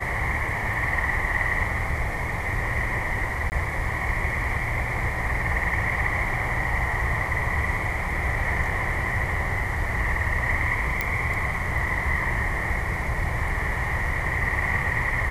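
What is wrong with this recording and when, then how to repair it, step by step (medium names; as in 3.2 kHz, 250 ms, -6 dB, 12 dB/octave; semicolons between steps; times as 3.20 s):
3.50–3.52 s: dropout 19 ms
11.01 s: pop -10 dBFS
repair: de-click; interpolate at 3.50 s, 19 ms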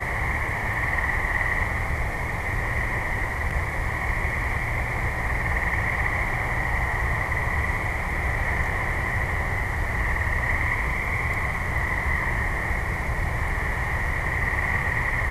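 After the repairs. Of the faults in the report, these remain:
nothing left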